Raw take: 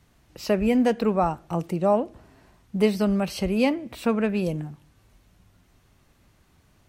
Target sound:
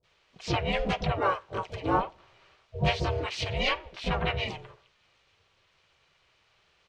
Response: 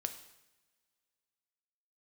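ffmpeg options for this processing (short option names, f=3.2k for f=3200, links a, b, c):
-filter_complex "[0:a]highpass=270,equalizer=f=300:t=q:w=4:g=-6,equalizer=f=540:t=q:w=4:g=-8,equalizer=f=860:t=q:w=4:g=5,equalizer=f=2.7k:t=q:w=4:g=10,equalizer=f=3.9k:t=q:w=4:g=5,lowpass=f=6k:w=0.5412,lowpass=f=6k:w=1.3066,aecho=1:1:4.6:0.48,aeval=exprs='val(0)*sin(2*PI*280*n/s)':c=same,acrossover=split=570[a][b];[b]adelay=40[c];[a][c]amix=inputs=2:normalize=0,asplit=3[d][e][f];[e]asetrate=37084,aresample=44100,atempo=1.18921,volume=-7dB[g];[f]asetrate=58866,aresample=44100,atempo=0.749154,volume=-10dB[h];[d][g][h]amix=inputs=3:normalize=0,volume=-1.5dB"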